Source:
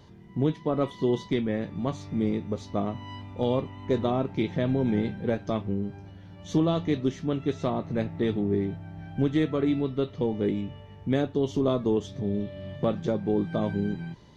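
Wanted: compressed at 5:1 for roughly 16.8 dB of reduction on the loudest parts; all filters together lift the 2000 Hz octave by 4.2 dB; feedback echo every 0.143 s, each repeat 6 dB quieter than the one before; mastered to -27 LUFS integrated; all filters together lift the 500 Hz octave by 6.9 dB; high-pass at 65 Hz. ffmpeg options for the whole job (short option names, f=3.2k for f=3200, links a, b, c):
-af "highpass=65,equalizer=f=500:t=o:g=8.5,equalizer=f=2k:t=o:g=4.5,acompressor=threshold=-35dB:ratio=5,aecho=1:1:143|286|429|572|715|858:0.501|0.251|0.125|0.0626|0.0313|0.0157,volume=10dB"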